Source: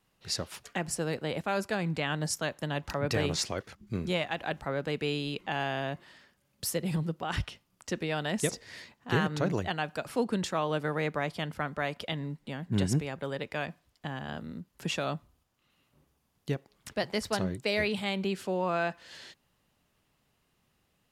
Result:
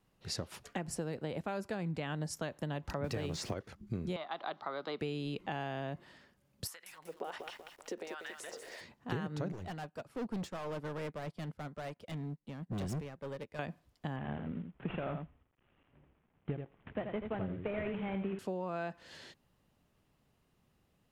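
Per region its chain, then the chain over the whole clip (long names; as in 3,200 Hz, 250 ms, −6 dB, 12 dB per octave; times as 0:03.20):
0:03.04–0:03.54: converter with a step at zero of −43.5 dBFS + multiband upward and downward compressor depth 70%
0:04.16–0:05.00: loudspeaker in its box 490–4,600 Hz, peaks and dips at 500 Hz −8 dB, 1,200 Hz +7 dB, 1,700 Hz −7 dB, 2,600 Hz −10 dB, 3,800 Hz +6 dB + multiband upward and downward compressor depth 70%
0:06.67–0:08.81: downward compressor 12 to 1, threshold −37 dBFS + auto-filter high-pass sine 1.4 Hz 400–1,700 Hz + feedback echo at a low word length 191 ms, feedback 55%, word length 9 bits, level −6 dB
0:09.52–0:13.59: hard clipping −34 dBFS + expander for the loud parts 2.5 to 1, over −49 dBFS
0:14.16–0:18.39: variable-slope delta modulation 16 kbit/s + single-tap delay 82 ms −7.5 dB
whole clip: tilt shelving filter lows +4 dB; downward compressor, threshold −32 dBFS; level −2 dB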